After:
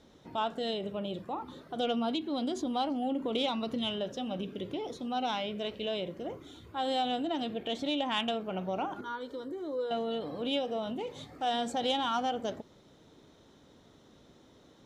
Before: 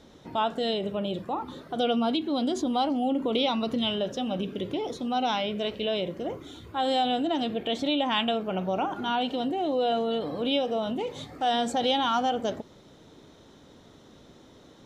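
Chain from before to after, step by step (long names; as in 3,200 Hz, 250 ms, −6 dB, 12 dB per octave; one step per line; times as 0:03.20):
0:09.01–0:09.91: phaser with its sweep stopped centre 740 Hz, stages 6
harmonic generator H 3 −21 dB, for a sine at −13 dBFS
level −3.5 dB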